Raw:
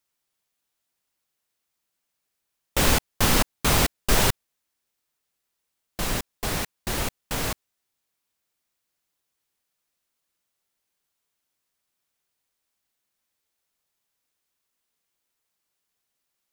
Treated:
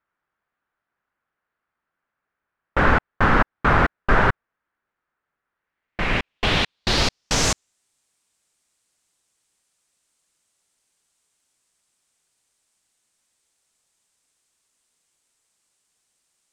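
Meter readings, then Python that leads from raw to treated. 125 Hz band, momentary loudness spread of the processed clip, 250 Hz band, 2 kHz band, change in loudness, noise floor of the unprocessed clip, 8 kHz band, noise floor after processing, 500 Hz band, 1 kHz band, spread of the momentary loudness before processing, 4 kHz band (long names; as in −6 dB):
+3.5 dB, 9 LU, +4.0 dB, +7.5 dB, +3.0 dB, −80 dBFS, −2.5 dB, −83 dBFS, +4.5 dB, +7.5 dB, 10 LU, +2.5 dB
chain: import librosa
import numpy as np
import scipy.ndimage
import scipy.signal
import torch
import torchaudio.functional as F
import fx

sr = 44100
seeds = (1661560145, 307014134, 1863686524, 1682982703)

p1 = fx.rider(x, sr, range_db=10, speed_s=0.5)
p2 = x + (p1 * librosa.db_to_amplitude(-1.0))
p3 = fx.filter_sweep_lowpass(p2, sr, from_hz=1500.0, to_hz=8400.0, start_s=5.52, end_s=7.8, q=2.6)
y = p3 * librosa.db_to_amplitude(-1.5)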